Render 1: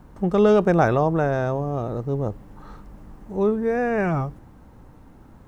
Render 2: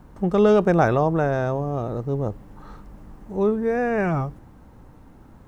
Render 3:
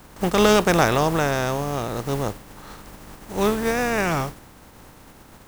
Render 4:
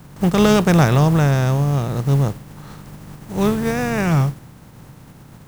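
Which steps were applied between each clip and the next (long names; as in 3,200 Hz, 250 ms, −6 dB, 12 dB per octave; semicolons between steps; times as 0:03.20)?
no processing that can be heard
compressing power law on the bin magnitudes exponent 0.54
parametric band 140 Hz +15 dB 1.1 octaves; level −1 dB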